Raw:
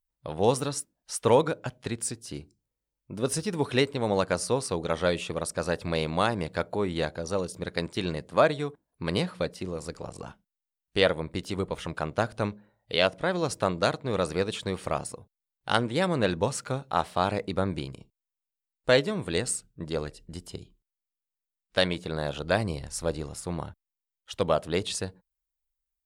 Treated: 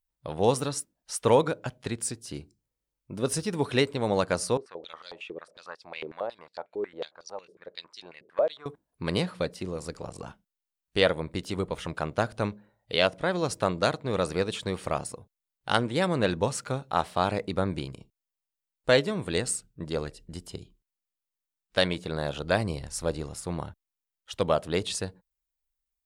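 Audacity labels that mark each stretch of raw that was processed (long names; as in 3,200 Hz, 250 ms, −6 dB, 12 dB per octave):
4.570000	8.660000	band-pass on a step sequencer 11 Hz 380–5,000 Hz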